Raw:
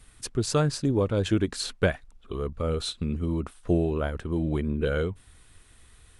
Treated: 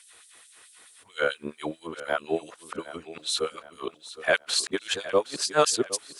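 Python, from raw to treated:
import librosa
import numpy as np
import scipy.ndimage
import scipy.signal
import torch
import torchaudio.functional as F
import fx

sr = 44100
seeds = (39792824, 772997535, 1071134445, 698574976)

p1 = np.flip(x).copy()
p2 = fx.filter_lfo_highpass(p1, sr, shape='sine', hz=4.6, low_hz=420.0, high_hz=5700.0, q=0.83)
p3 = p2 + fx.echo_feedback(p2, sr, ms=765, feedback_pct=41, wet_db=-15, dry=0)
y = F.gain(torch.from_numpy(p3), 7.0).numpy()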